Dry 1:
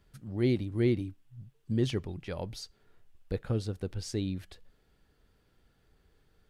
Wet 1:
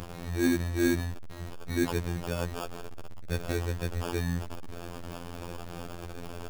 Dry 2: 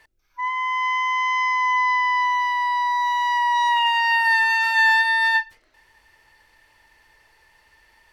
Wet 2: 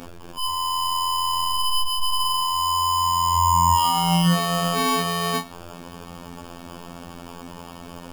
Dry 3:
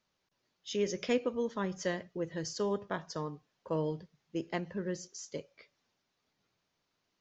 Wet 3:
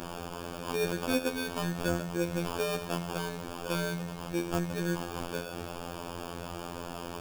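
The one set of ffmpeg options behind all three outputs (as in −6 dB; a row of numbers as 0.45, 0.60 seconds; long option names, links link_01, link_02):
-af "aeval=exprs='val(0)+0.5*0.0211*sgn(val(0))':channel_layout=same,acrusher=samples=22:mix=1:aa=0.000001,afftfilt=real='hypot(re,im)*cos(PI*b)':imag='0':win_size=2048:overlap=0.75,volume=3.5dB"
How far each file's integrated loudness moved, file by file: 0.0, −2.0, +2.0 LU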